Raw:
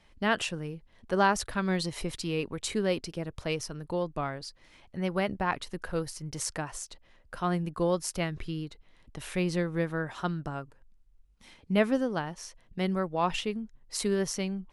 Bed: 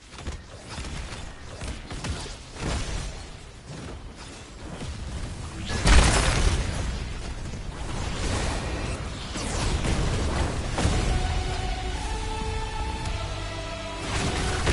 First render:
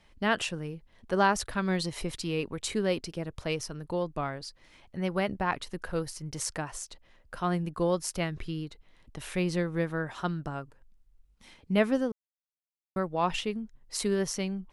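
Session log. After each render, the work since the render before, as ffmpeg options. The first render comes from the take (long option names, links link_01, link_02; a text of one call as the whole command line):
ffmpeg -i in.wav -filter_complex "[0:a]asplit=3[link_01][link_02][link_03];[link_01]atrim=end=12.12,asetpts=PTS-STARTPTS,afade=type=out:start_time=12.116:duration=0.004:curve=hsin[link_04];[link_02]atrim=start=12.12:end=12.96,asetpts=PTS-STARTPTS,volume=0[link_05];[link_03]atrim=start=12.96,asetpts=PTS-STARTPTS,afade=type=in:duration=0.004:curve=hsin[link_06];[link_04][link_05][link_06]concat=n=3:v=0:a=1" out.wav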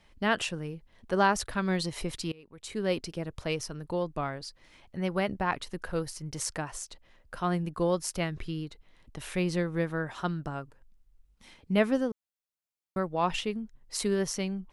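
ffmpeg -i in.wav -filter_complex "[0:a]asplit=2[link_01][link_02];[link_01]atrim=end=2.32,asetpts=PTS-STARTPTS,afade=type=out:start_time=2.316:duration=0.004:curve=hsin:silence=0.0668344[link_03];[link_02]atrim=start=2.32,asetpts=PTS-STARTPTS,afade=type=in:duration=0.59:curve=qua:silence=0.0668344[link_04];[link_03][link_04]concat=n=2:v=0:a=1" out.wav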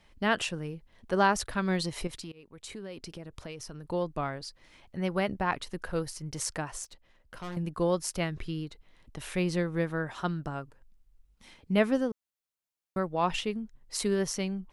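ffmpeg -i in.wav -filter_complex "[0:a]asettb=1/sr,asplit=3[link_01][link_02][link_03];[link_01]atrim=end=2.074[link_04];[link_02]atrim=start=2.07:end=3.88,asetpts=PTS-STARTPTS,afade=type=in:duration=0.004:curve=qsin,afade=type=out:start_time=1.806:duration=0.004:curve=qsin,acompressor=threshold=-38dB:ratio=6:attack=3.2:release=140:knee=1:detection=peak[link_05];[link_03]atrim=start=3.876[link_06];[link_04][link_05]acrossfade=duration=0.004:curve1=hsin:curve2=qsin[link_07];[link_07][link_06]acrossfade=duration=0.004:curve1=qsin:curve2=hsin,asettb=1/sr,asplit=3[link_08][link_09][link_10];[link_08]atrim=end=6.844[link_11];[link_09]atrim=start=6.84:end=7.57,asetpts=PTS-STARTPTS,afade=type=in:duration=0.004:curve=qsin,afade=type=out:start_time=0.726:duration=0.004:curve=qsin,aeval=exprs='(tanh(63.1*val(0)+0.7)-tanh(0.7))/63.1':channel_layout=same[link_12];[link_10]atrim=start=7.566[link_13];[link_11][link_12]acrossfade=duration=0.004:curve1=hsin:curve2=qsin[link_14];[link_14][link_13]acrossfade=duration=0.004:curve1=qsin:curve2=hsin" out.wav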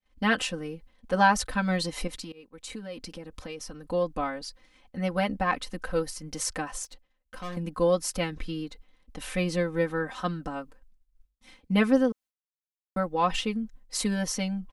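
ffmpeg -i in.wav -af "agate=range=-33dB:threshold=-50dB:ratio=3:detection=peak,aecho=1:1:3.9:0.99" out.wav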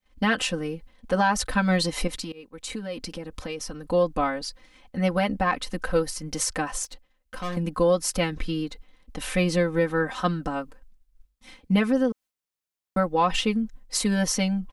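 ffmpeg -i in.wav -af "acontrast=39,alimiter=limit=-12.5dB:level=0:latency=1:release=200" out.wav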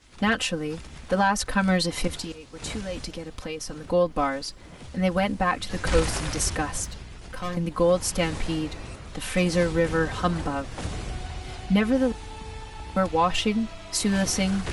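ffmpeg -i in.wav -i bed.wav -filter_complex "[1:a]volume=-8.5dB[link_01];[0:a][link_01]amix=inputs=2:normalize=0" out.wav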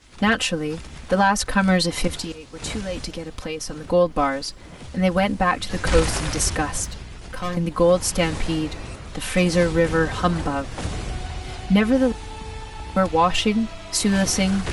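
ffmpeg -i in.wav -af "volume=4dB" out.wav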